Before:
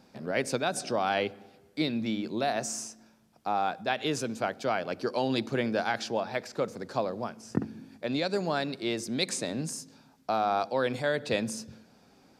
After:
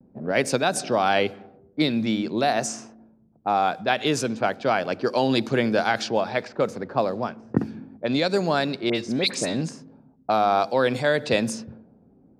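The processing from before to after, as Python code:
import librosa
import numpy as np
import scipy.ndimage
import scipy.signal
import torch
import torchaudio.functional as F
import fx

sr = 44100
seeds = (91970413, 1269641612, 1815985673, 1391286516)

y = fx.dispersion(x, sr, late='highs', ms=57.0, hz=2400.0, at=(8.89, 9.62))
y = fx.env_lowpass(y, sr, base_hz=320.0, full_db=-26.5)
y = fx.vibrato(y, sr, rate_hz=0.46, depth_cents=27.0)
y = F.gain(torch.from_numpy(y), 7.0).numpy()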